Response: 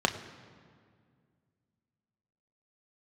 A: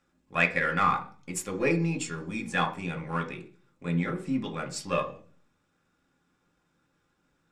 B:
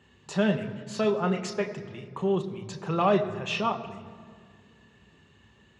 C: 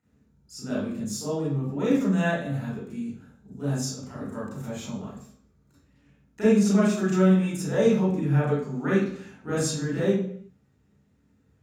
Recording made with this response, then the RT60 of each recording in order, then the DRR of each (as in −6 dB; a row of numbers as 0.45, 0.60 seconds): B; 0.40, 2.0, 0.65 seconds; 3.5, 4.5, −8.0 decibels